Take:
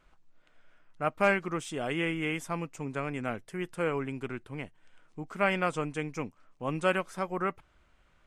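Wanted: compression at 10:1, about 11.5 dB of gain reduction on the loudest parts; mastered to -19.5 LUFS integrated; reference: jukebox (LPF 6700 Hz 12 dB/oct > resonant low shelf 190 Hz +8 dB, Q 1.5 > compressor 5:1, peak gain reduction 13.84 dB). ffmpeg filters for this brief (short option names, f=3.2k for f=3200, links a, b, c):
-af "acompressor=threshold=-32dB:ratio=10,lowpass=6.7k,lowshelf=f=190:t=q:w=1.5:g=8,acompressor=threshold=-44dB:ratio=5,volume=28.5dB"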